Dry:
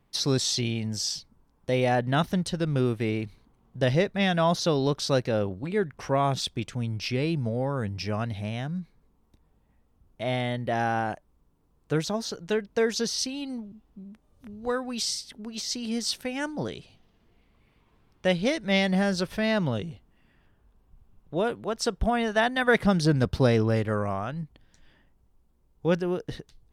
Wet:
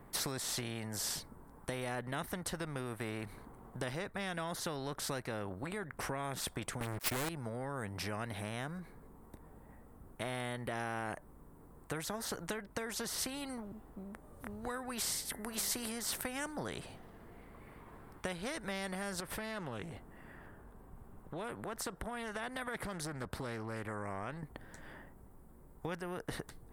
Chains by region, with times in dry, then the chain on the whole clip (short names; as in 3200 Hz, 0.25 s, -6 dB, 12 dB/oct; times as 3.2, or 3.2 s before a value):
6.8–7.29 gate -32 dBFS, range -22 dB + sample leveller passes 5
15.25–15.92 bell 11000 Hz +12 dB 0.73 oct + de-hum 98.86 Hz, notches 21
19.2–24.43 compressor 2.5:1, threshold -41 dBFS + Doppler distortion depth 0.22 ms
whole clip: band shelf 4000 Hz -13.5 dB; compressor 5:1, threshold -33 dBFS; spectral compressor 2:1; gain +2.5 dB